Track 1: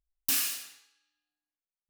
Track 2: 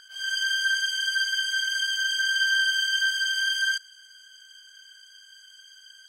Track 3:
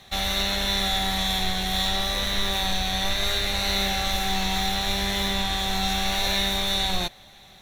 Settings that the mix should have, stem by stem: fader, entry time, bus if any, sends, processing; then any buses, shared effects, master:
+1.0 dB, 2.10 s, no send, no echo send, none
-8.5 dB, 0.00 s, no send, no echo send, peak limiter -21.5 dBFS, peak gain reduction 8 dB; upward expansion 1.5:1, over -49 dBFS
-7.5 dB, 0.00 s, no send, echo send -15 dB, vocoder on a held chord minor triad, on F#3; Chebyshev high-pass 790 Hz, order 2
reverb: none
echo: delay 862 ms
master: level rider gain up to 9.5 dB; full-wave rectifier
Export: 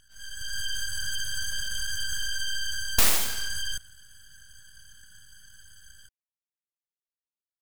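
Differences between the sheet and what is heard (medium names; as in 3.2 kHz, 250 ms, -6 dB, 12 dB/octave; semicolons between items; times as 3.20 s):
stem 1: entry 2.10 s -> 2.70 s; stem 2: missing upward expansion 1.5:1, over -49 dBFS; stem 3: muted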